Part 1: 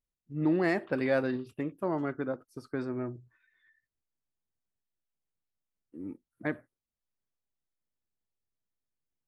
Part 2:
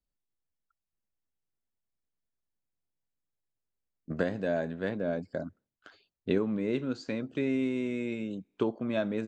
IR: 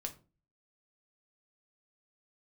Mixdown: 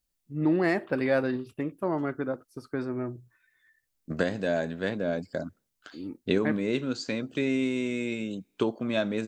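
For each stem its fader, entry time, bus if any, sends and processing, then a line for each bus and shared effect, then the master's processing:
+2.5 dB, 0.00 s, no send, none
+2.0 dB, 0.00 s, no send, treble shelf 3.1 kHz +11.5 dB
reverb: none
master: none

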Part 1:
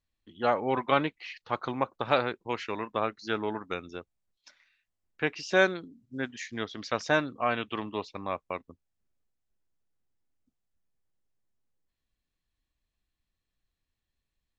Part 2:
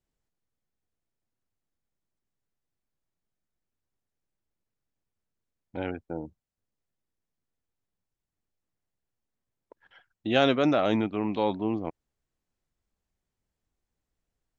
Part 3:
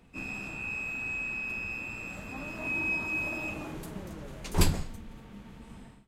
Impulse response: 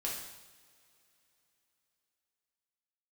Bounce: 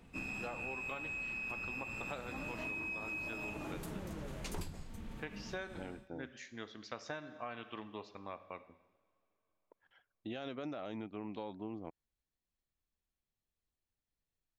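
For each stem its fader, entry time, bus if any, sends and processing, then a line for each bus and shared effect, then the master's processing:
-13.5 dB, 0.00 s, send -10.5 dB, none
-11.5 dB, 0.00 s, no send, peak limiter -14.5 dBFS, peak gain reduction 7 dB
-0.5 dB, 0.00 s, no send, none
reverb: on, pre-delay 3 ms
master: compression 20:1, threshold -38 dBFS, peak gain reduction 22 dB

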